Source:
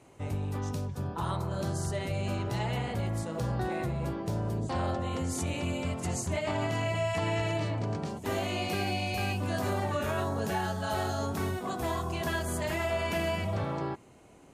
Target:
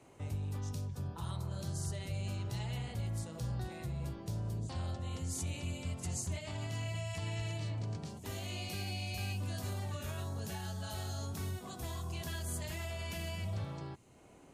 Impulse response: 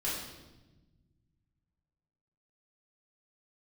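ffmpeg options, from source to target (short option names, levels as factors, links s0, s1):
-filter_complex "[0:a]acrossover=split=150|3000[s0][s1][s2];[s1]acompressor=threshold=0.00355:ratio=2.5[s3];[s0][s3][s2]amix=inputs=3:normalize=0,volume=0.708"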